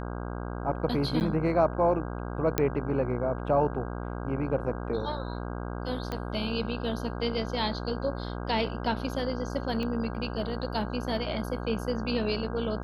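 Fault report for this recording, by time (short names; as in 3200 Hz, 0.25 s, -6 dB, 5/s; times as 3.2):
buzz 60 Hz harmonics 27 -35 dBFS
1.2–1.21 gap 9.1 ms
2.58 pop -9 dBFS
6.12 pop -19 dBFS
9.83 pop -22 dBFS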